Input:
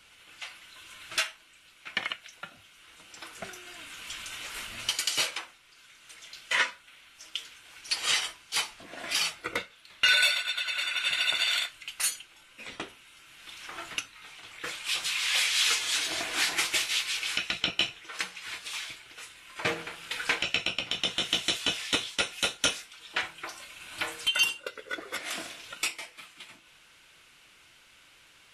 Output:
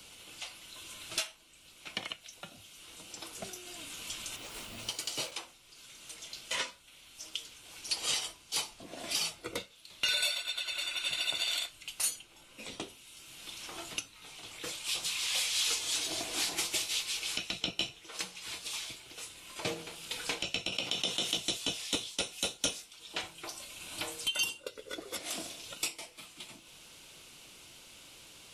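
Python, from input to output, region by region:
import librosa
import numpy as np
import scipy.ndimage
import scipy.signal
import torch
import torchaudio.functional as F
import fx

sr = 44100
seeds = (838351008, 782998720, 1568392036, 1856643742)

y = fx.chain(x, sr, fx.delta_hold(step_db=-46.5),
    fx.high_shelf(hz=2600.0, db=-8.0), at=(4.36, 5.32))
y = fx.chain(y, sr, fx.highpass(hz=280.0, slope=6),
    fx.env_flatten(amount_pct=50), at=(20.72, 21.37))
y = fx.peak_eq(y, sr, hz=1700.0, db=-14.0, octaves=1.4)
y = fx.band_squash(y, sr, depth_pct=40)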